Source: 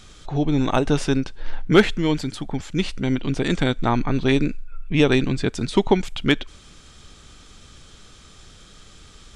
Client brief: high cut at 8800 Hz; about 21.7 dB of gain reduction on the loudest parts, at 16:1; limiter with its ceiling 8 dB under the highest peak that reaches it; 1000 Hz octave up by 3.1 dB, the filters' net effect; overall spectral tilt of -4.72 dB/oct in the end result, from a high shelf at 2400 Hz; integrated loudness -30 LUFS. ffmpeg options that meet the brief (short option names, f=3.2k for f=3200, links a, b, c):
-af "lowpass=8.8k,equalizer=f=1k:t=o:g=3.5,highshelf=f=2.4k:g=3,acompressor=threshold=-31dB:ratio=16,volume=11.5dB,alimiter=limit=-17.5dB:level=0:latency=1"